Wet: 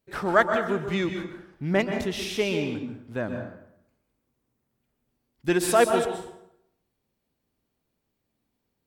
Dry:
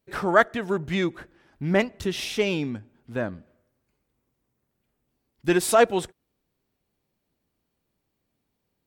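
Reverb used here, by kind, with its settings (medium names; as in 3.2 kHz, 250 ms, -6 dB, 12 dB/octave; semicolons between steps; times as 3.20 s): plate-style reverb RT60 0.76 s, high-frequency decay 0.7×, pre-delay 115 ms, DRR 5.5 dB; trim -2 dB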